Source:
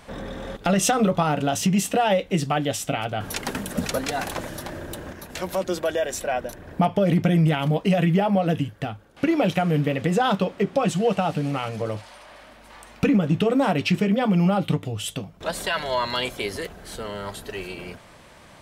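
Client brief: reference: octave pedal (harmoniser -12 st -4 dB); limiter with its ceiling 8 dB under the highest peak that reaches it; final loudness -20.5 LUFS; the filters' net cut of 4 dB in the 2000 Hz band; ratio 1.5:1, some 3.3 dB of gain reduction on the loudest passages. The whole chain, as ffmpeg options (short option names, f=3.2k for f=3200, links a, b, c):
-filter_complex "[0:a]equalizer=f=2k:t=o:g=-5.5,acompressor=threshold=-25dB:ratio=1.5,alimiter=limit=-19dB:level=0:latency=1,asplit=2[a][b];[b]asetrate=22050,aresample=44100,atempo=2,volume=-4dB[c];[a][c]amix=inputs=2:normalize=0,volume=7.5dB"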